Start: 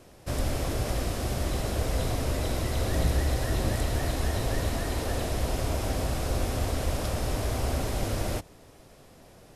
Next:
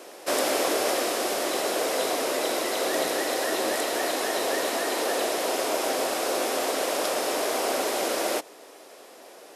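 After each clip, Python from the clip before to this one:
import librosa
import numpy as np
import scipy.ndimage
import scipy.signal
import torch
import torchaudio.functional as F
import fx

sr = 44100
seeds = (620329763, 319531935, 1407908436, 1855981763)

y = scipy.signal.sosfilt(scipy.signal.butter(4, 340.0, 'highpass', fs=sr, output='sos'), x)
y = fx.rider(y, sr, range_db=10, speed_s=2.0)
y = y * librosa.db_to_amplitude(8.0)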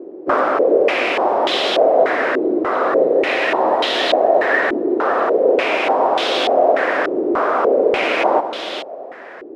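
y = x + 10.0 ** (-10.5 / 20.0) * np.pad(x, (int(418 * sr / 1000.0), 0))[:len(x)]
y = fx.rider(y, sr, range_db=3, speed_s=0.5)
y = fx.filter_held_lowpass(y, sr, hz=3.4, low_hz=350.0, high_hz=3400.0)
y = y * librosa.db_to_amplitude(6.5)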